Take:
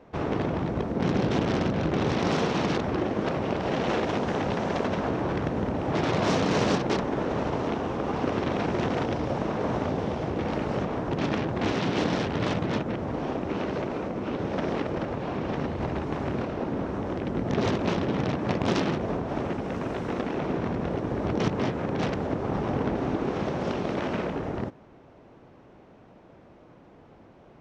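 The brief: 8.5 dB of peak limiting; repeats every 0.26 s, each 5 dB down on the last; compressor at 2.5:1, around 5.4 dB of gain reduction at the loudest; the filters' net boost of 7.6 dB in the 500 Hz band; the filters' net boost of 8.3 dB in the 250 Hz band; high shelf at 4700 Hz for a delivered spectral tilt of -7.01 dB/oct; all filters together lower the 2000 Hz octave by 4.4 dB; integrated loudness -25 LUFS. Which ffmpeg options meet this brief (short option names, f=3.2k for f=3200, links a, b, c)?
-af "equalizer=f=250:t=o:g=8.5,equalizer=f=500:t=o:g=7,equalizer=f=2k:t=o:g=-5.5,highshelf=f=4.7k:g=-5,acompressor=threshold=-22dB:ratio=2.5,alimiter=limit=-19dB:level=0:latency=1,aecho=1:1:260|520|780|1040|1300|1560|1820:0.562|0.315|0.176|0.0988|0.0553|0.031|0.0173,volume=1.5dB"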